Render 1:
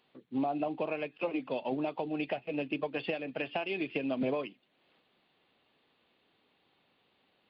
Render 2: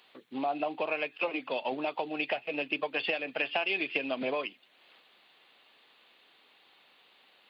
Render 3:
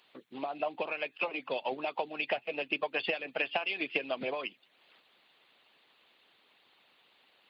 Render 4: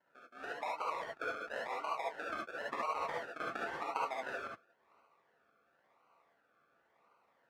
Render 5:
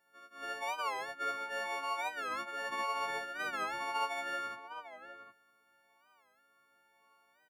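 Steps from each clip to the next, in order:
in parallel at 0 dB: compressor, threshold -42 dBFS, peak gain reduction 14 dB; on the sum: HPF 1200 Hz 6 dB/oct; gain +6.5 dB
low shelf 140 Hz +8.5 dB; harmonic-percussive split harmonic -11 dB
decimation with a swept rate 36×, swing 60% 0.95 Hz; band-pass 1300 Hz, Q 2.2; non-linear reverb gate 90 ms rising, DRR -3.5 dB
frequency quantiser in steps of 4 st; outdoor echo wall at 130 m, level -10 dB; record warp 45 rpm, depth 160 cents; gain -2 dB

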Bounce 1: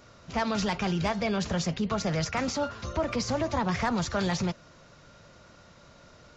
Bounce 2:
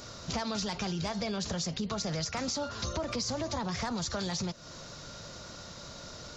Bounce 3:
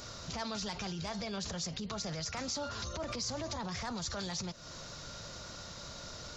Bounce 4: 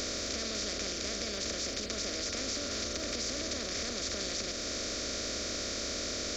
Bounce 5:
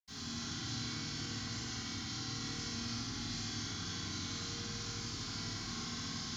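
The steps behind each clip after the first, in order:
resonant high shelf 3300 Hz +6.5 dB, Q 1.5; in parallel at +1.5 dB: limiter -25 dBFS, peak gain reduction 11 dB; on the sum: compressor 5:1, threshold -32 dBFS, peak gain reduction 12 dB
low shelf 160 Hz +11 dB; limiter -26.5 dBFS, peak gain reduction 8.5 dB; low shelf 380 Hz -9 dB
per-bin compression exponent 0.2; fixed phaser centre 370 Hz, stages 4; crackle 91/s -46 dBFS; gain -3 dB
delay with a stepping band-pass 0.154 s, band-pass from 270 Hz, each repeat 1.4 oct, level -1.5 dB; frequency shift -340 Hz; reverb RT60 2.0 s, pre-delay 76 ms; gain +11 dB

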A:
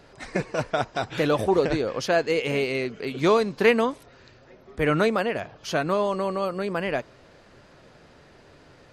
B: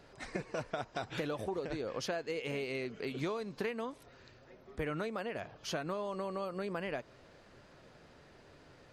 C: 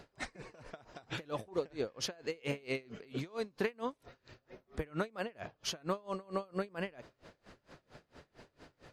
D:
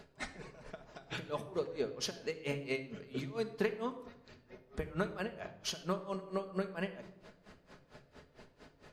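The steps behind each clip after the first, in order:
compressor 12:1, threshold -27 dBFS, peak gain reduction 14.5 dB; gain -6.5 dB
dB-linear tremolo 4.4 Hz, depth 28 dB; gain +5.5 dB
shoebox room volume 3000 m³, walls furnished, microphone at 1.4 m; gain -1 dB

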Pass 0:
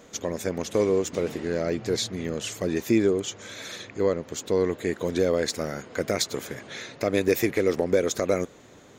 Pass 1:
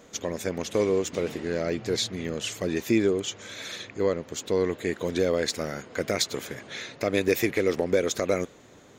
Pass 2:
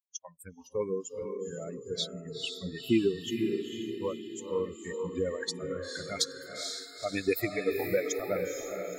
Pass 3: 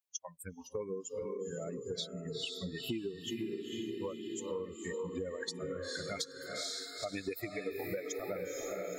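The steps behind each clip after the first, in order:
dynamic EQ 2900 Hz, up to +4 dB, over -43 dBFS, Q 0.92; gain -1.5 dB
per-bin expansion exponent 3; diffused feedback echo 0.47 s, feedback 52%, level -4 dB; spectral noise reduction 27 dB
compressor 6:1, threshold -38 dBFS, peak gain reduction 16.5 dB; gain +2 dB

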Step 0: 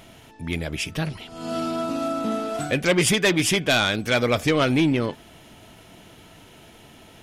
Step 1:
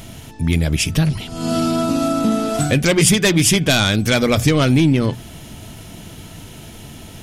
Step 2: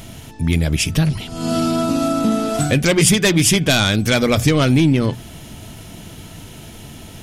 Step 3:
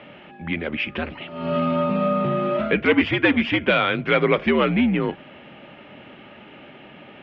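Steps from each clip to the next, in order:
tone controls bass +11 dB, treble +8 dB; notches 60/120/180 Hz; compressor 2:1, threshold -20 dBFS, peak gain reduction 5.5 dB; gain +6 dB
nothing audible
mistuned SSB -79 Hz 300–2900 Hz

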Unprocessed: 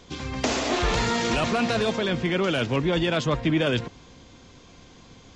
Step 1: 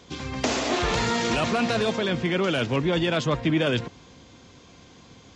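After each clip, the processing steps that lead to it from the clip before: HPF 63 Hz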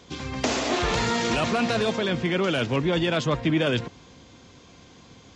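nothing audible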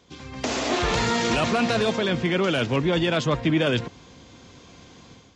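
AGC gain up to 10 dB; gain -7.5 dB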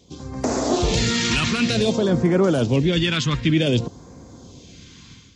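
phaser stages 2, 0.54 Hz, lowest notch 590–2900 Hz; gain +5.5 dB

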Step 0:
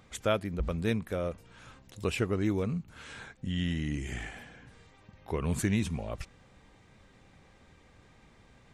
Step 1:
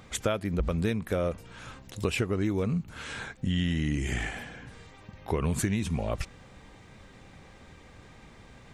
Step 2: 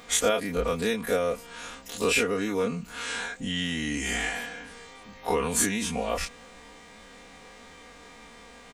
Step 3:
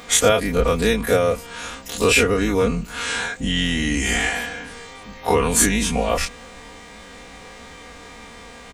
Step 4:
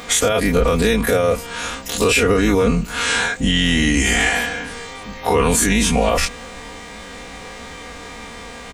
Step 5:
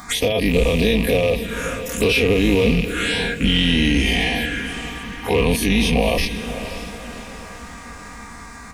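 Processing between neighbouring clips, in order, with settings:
compressor 12:1, threshold -31 dBFS, peak gain reduction 10 dB; gain +7.5 dB
spectral dilation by 60 ms; tone controls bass -11 dB, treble +4 dB; comb 4.2 ms, depth 74%
octaver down 2 oct, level -4 dB; gain +8 dB
limiter -12.5 dBFS, peak gain reduction 10.5 dB; gain +6 dB
rattling part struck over -23 dBFS, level -11 dBFS; envelope phaser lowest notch 450 Hz, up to 1400 Hz, full sweep at -14 dBFS; diffused feedback echo 0.544 s, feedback 46%, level -11 dB

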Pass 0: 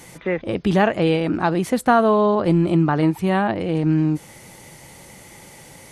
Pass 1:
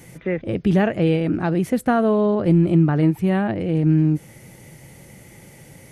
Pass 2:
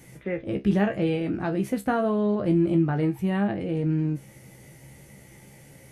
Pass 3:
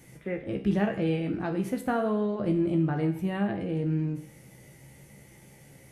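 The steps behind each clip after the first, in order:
ten-band EQ 125 Hz +5 dB, 1000 Hz -9 dB, 4000 Hz -7 dB, 8000 Hz -5 dB
resonator 67 Hz, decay 0.18 s, harmonics all, mix 90%
Schroeder reverb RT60 0.67 s, DRR 10 dB; gain -3.5 dB

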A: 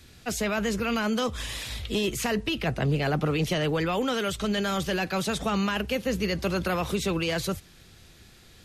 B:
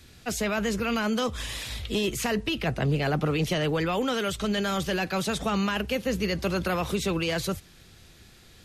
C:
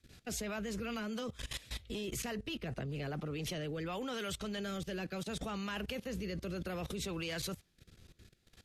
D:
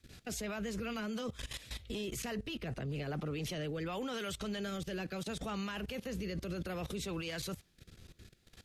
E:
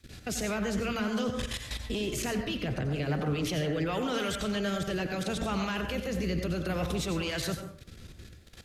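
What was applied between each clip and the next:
nothing audible
rotary speaker horn 5 Hz, later 0.65 Hz, at 2.95; level quantiser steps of 18 dB; gain -3 dB
limiter -35 dBFS, peak gain reduction 8.5 dB; gain +3.5 dB
plate-style reverb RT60 0.56 s, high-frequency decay 0.45×, pre-delay 75 ms, DRR 5 dB; Doppler distortion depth 0.11 ms; gain +7 dB

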